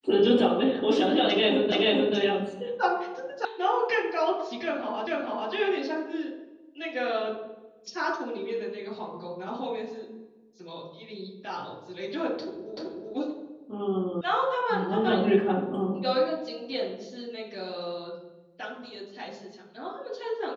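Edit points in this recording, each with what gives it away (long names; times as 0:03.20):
0:01.72: the same again, the last 0.43 s
0:03.45: cut off before it has died away
0:05.07: the same again, the last 0.44 s
0:12.77: the same again, the last 0.38 s
0:14.21: cut off before it has died away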